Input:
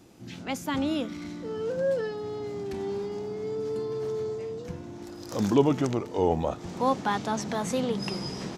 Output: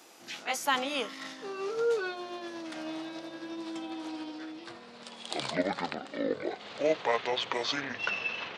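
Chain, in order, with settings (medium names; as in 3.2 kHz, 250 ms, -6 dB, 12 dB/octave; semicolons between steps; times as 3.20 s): pitch bend over the whole clip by -11.5 st starting unshifted; high-pass 710 Hz 12 dB/octave; trim +7 dB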